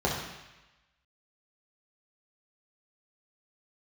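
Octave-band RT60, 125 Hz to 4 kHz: 1.0 s, 0.95 s, 0.95 s, 1.1 s, 1.2 s, 1.1 s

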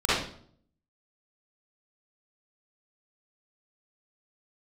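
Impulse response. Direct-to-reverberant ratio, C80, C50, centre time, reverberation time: -11.5 dB, 4.0 dB, -5.5 dB, 72 ms, 0.55 s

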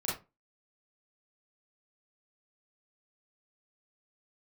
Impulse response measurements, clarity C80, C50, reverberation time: 13.0 dB, 4.0 dB, 0.25 s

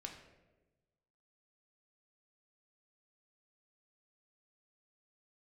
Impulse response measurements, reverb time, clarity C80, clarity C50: 1.1 s, 9.0 dB, 7.0 dB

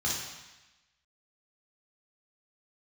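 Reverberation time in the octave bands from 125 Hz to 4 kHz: 1.0 s, 1.0 s, 0.95 s, 1.1 s, 1.2 s, 1.2 s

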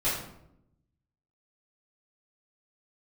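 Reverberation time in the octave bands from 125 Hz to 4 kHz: 1.3 s, 1.1 s, 0.85 s, 0.70 s, 0.60 s, 0.45 s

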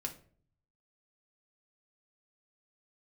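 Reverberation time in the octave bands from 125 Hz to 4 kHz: 1.0 s, 0.70 s, 0.55 s, 0.40 s, 0.40 s, 0.30 s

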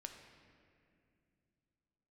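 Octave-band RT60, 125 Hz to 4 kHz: 3.8 s, 3.6 s, 2.7 s, 2.2 s, 2.3 s, 1.6 s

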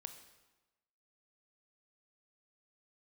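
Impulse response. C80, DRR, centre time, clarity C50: 11.5 dB, 7.5 dB, 15 ms, 9.5 dB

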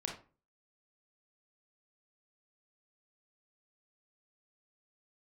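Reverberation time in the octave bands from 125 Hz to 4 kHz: 0.50 s, 0.45 s, 0.35 s, 0.35 s, 0.30 s, 0.25 s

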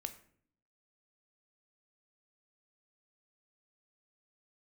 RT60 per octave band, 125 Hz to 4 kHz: 0.90 s, 0.90 s, 0.65 s, 0.50 s, 0.50 s, 0.40 s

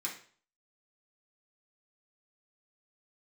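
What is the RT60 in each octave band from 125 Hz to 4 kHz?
0.50 s, 0.45 s, 0.45 s, 0.45 s, 0.45 s, 0.45 s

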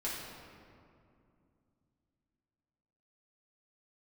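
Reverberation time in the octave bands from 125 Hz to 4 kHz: 3.7 s, 3.6 s, 2.6 s, 2.3 s, 1.8 s, 1.3 s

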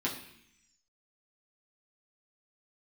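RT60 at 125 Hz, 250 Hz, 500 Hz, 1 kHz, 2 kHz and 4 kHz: 0.95 s, 0.95 s, 0.70 s, 0.70 s, 1.0 s, 1.2 s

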